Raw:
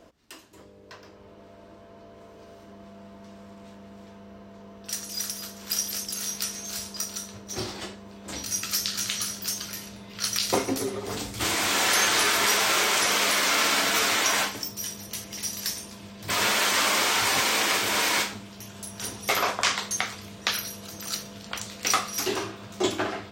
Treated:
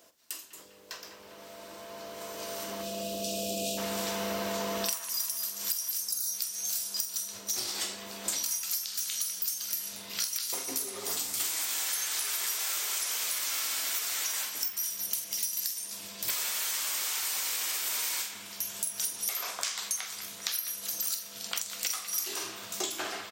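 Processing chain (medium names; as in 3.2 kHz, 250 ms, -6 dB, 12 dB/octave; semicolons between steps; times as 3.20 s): recorder AGC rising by 6.7 dB/s; spectral selection erased 6.02–6.33 s, 1.6–3.6 kHz; RIAA curve recording; time-frequency box 2.83–3.78 s, 760–2400 Hz -27 dB; treble shelf 4.7 kHz +4.5 dB; compression 10:1, threshold -22 dBFS, peak gain reduction 18.5 dB; doubling 46 ms -12 dB; feedback echo behind a band-pass 199 ms, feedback 61%, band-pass 1.6 kHz, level -9.5 dB; trim -7.5 dB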